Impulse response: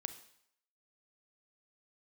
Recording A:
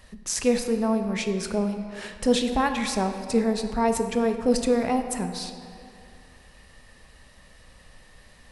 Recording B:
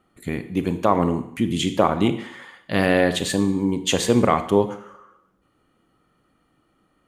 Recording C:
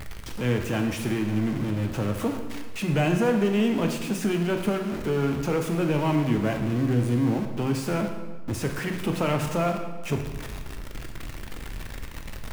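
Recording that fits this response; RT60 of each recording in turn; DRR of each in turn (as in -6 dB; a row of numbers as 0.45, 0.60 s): B; 2.5, 0.70, 1.3 s; 6.5, 10.0, 3.5 dB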